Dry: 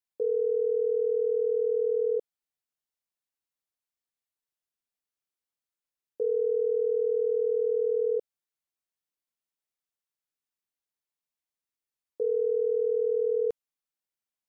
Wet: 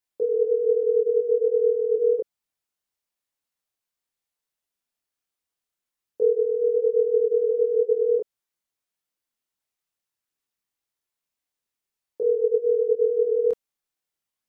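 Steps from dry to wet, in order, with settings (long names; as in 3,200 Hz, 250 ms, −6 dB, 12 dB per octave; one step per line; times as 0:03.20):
multi-voice chorus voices 2, 1.2 Hz, delay 26 ms, depth 3 ms
level +8 dB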